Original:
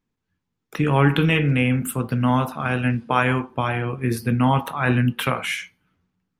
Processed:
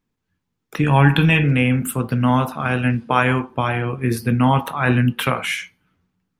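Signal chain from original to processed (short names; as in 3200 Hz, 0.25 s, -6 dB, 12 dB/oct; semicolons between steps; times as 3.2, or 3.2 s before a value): 0.84–1.44 comb 1.2 ms, depth 46%; gain +2.5 dB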